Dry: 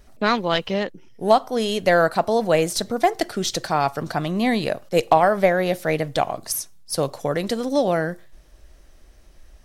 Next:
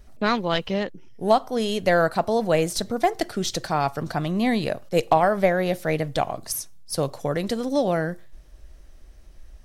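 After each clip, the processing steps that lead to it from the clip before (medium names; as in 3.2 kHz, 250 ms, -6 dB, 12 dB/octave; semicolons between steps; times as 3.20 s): bass shelf 160 Hz +6.5 dB; trim -3 dB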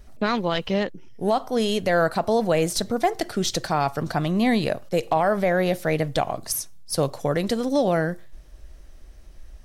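peak limiter -13.5 dBFS, peak gain reduction 7 dB; trim +2 dB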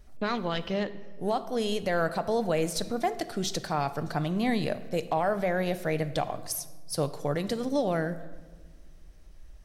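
simulated room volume 1200 m³, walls mixed, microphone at 0.42 m; trim -6.5 dB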